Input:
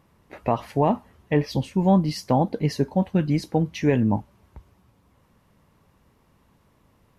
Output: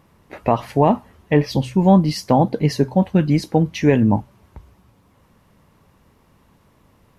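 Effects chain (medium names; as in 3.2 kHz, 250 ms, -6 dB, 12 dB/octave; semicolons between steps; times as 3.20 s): de-hum 63.11 Hz, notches 2; trim +5.5 dB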